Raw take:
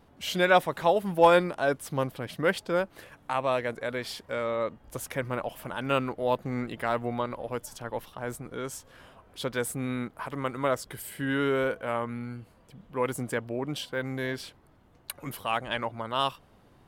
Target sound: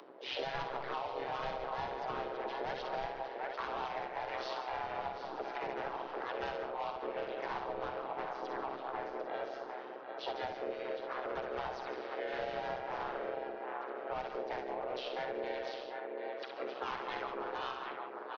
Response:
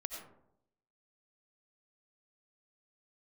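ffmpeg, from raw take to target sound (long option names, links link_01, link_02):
-filter_complex "[0:a]aecho=1:1:686|1372|2058:0.266|0.0772|0.0224,alimiter=limit=-16.5dB:level=0:latency=1:release=269,asetrate=40517,aresample=44100,afreqshift=310,aresample=11025,asoftclip=type=tanh:threshold=-26.5dB,aresample=44100,highshelf=frequency=2500:gain=-11.5,asplit=2[link_01][link_02];[1:a]atrim=start_sample=2205,adelay=60[link_03];[link_02][link_03]afir=irnorm=-1:irlink=0,volume=-2dB[link_04];[link_01][link_04]amix=inputs=2:normalize=0,asplit=3[link_05][link_06][link_07];[link_06]asetrate=37084,aresample=44100,atempo=1.18921,volume=-2dB[link_08];[link_07]asetrate=52444,aresample=44100,atempo=0.840896,volume=-6dB[link_09];[link_05][link_08][link_09]amix=inputs=3:normalize=0,acompressor=mode=upward:threshold=-49dB:ratio=2.5,tremolo=f=130:d=0.621,acrossover=split=190|3000[link_10][link_11][link_12];[link_11]acompressor=threshold=-37dB:ratio=6[link_13];[link_10][link_13][link_12]amix=inputs=3:normalize=0,volume=1dB"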